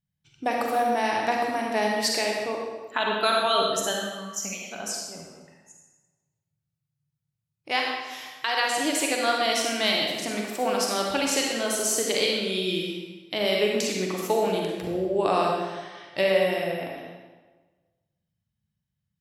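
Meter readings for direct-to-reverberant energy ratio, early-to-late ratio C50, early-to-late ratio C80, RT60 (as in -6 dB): -1.0 dB, 0.0 dB, 2.5 dB, 1.3 s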